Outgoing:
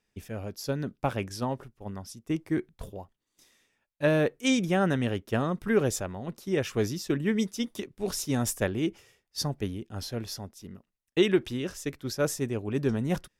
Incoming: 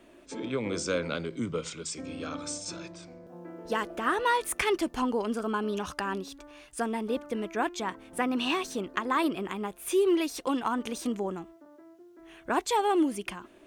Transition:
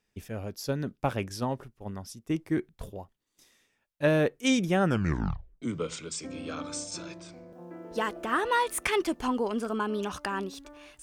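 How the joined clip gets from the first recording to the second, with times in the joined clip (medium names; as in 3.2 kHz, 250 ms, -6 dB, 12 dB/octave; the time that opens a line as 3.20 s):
outgoing
4.83 s: tape stop 0.79 s
5.62 s: go over to incoming from 1.36 s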